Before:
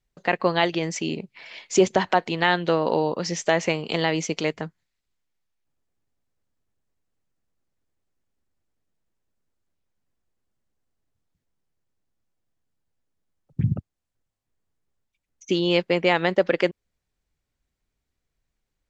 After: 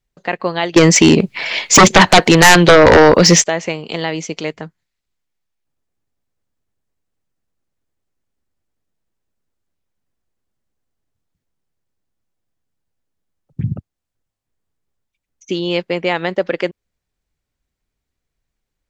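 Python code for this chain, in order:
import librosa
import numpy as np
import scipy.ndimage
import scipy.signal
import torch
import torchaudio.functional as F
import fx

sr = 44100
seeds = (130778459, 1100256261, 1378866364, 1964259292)

y = fx.fold_sine(x, sr, drive_db=15, ceiling_db=-3.5, at=(0.76, 3.44))
y = F.gain(torch.from_numpy(y), 2.0).numpy()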